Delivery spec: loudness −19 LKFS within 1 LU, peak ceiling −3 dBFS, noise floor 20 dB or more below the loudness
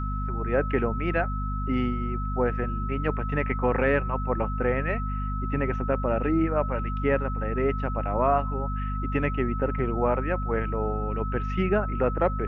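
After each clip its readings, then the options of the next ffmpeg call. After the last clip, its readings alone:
mains hum 50 Hz; hum harmonics up to 250 Hz; level of the hum −27 dBFS; interfering tone 1,300 Hz; level of the tone −34 dBFS; integrated loudness −27.0 LKFS; sample peak −9.5 dBFS; target loudness −19.0 LKFS
→ -af "bandreject=frequency=50:width_type=h:width=6,bandreject=frequency=100:width_type=h:width=6,bandreject=frequency=150:width_type=h:width=6,bandreject=frequency=200:width_type=h:width=6,bandreject=frequency=250:width_type=h:width=6"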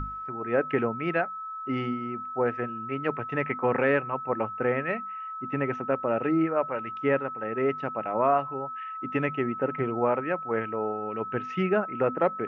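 mains hum none found; interfering tone 1,300 Hz; level of the tone −34 dBFS
→ -af "bandreject=frequency=1300:width=30"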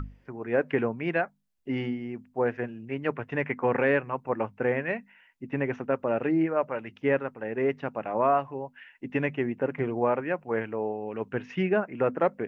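interfering tone none found; integrated loudness −29.0 LKFS; sample peak −11.0 dBFS; target loudness −19.0 LKFS
→ -af "volume=10dB,alimiter=limit=-3dB:level=0:latency=1"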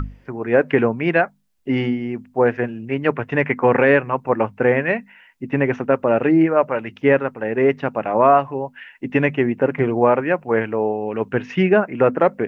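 integrated loudness −19.0 LKFS; sample peak −3.0 dBFS; background noise floor −53 dBFS

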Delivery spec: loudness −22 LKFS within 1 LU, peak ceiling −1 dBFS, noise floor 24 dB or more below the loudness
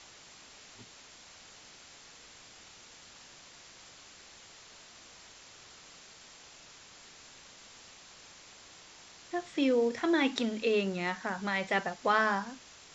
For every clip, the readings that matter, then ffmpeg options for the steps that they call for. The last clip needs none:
background noise floor −54 dBFS; target noise floor −55 dBFS; integrated loudness −30.5 LKFS; sample peak −14.0 dBFS; target loudness −22.0 LKFS
→ -af "afftdn=noise_reduction=6:noise_floor=-54"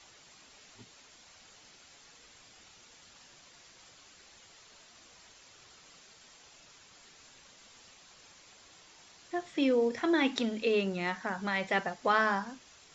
background noise floor −58 dBFS; integrated loudness −30.5 LKFS; sample peak −14.5 dBFS; target loudness −22.0 LKFS
→ -af "volume=8.5dB"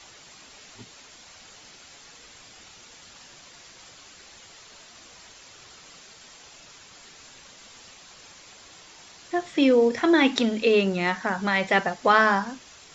integrated loudness −22.0 LKFS; sample peak −6.0 dBFS; background noise floor −50 dBFS

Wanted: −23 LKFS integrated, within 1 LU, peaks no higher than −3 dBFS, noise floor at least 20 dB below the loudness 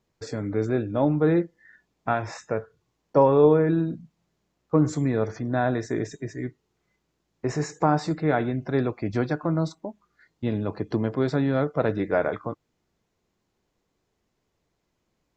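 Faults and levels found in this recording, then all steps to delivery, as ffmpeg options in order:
integrated loudness −25.0 LKFS; sample peak −7.0 dBFS; target loudness −23.0 LKFS
→ -af "volume=2dB"

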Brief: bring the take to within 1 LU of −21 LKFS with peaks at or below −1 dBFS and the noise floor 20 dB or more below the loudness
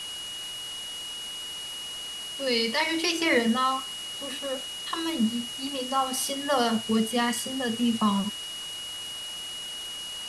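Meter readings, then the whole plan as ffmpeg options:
interfering tone 2,900 Hz; level of the tone −35 dBFS; background noise floor −37 dBFS; target noise floor −48 dBFS; integrated loudness −28.0 LKFS; sample peak −11.0 dBFS; target loudness −21.0 LKFS
→ -af "bandreject=frequency=2900:width=30"
-af "afftdn=noise_reduction=11:noise_floor=-37"
-af "volume=7dB"

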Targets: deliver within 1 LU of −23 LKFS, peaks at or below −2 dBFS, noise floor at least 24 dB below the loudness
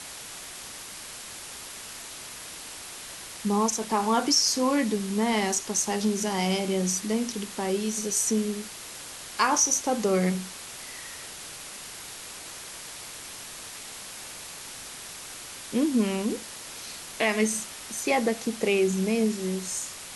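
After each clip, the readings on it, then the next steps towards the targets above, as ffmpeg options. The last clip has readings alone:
background noise floor −41 dBFS; target noise floor −53 dBFS; integrated loudness −28.5 LKFS; sample peak −9.0 dBFS; target loudness −23.0 LKFS
→ -af "afftdn=noise_reduction=12:noise_floor=-41"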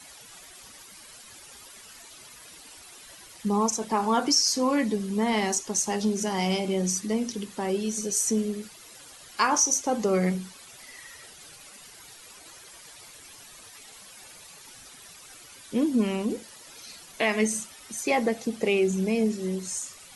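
background noise floor −49 dBFS; target noise floor −50 dBFS
→ -af "afftdn=noise_reduction=6:noise_floor=-49"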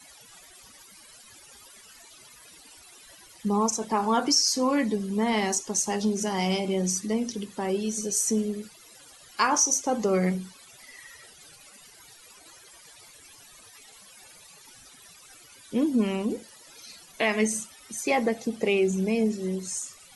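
background noise floor −52 dBFS; integrated loudness −26.0 LKFS; sample peak −9.5 dBFS; target loudness −23.0 LKFS
→ -af "volume=3dB"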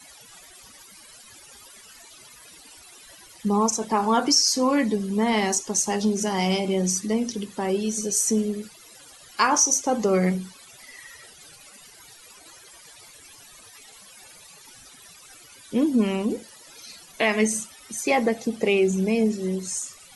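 integrated loudness −23.0 LKFS; sample peak −6.5 dBFS; background noise floor −49 dBFS

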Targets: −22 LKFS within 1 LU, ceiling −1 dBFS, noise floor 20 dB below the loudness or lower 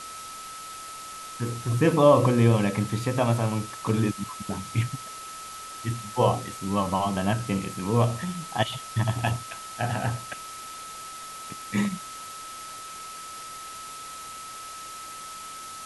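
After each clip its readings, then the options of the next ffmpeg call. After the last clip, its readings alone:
interfering tone 1,300 Hz; level of the tone −39 dBFS; background noise floor −40 dBFS; target noise floor −48 dBFS; integrated loudness −28.0 LKFS; sample peak −6.5 dBFS; target loudness −22.0 LKFS
→ -af "bandreject=frequency=1300:width=30"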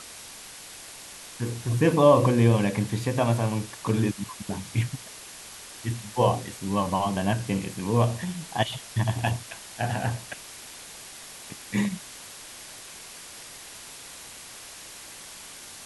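interfering tone none found; background noise floor −44 dBFS; target noise floor −46 dBFS
→ -af "afftdn=noise_reduction=6:noise_floor=-44"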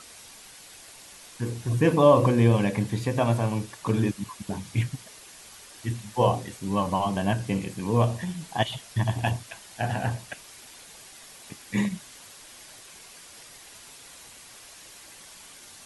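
background noise floor −48 dBFS; integrated loudness −26.0 LKFS; sample peak −6.5 dBFS; target loudness −22.0 LKFS
→ -af "volume=4dB"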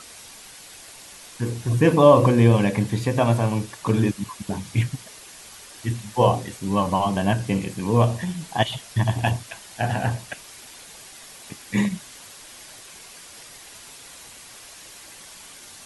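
integrated loudness −22.0 LKFS; sample peak −2.5 dBFS; background noise floor −44 dBFS

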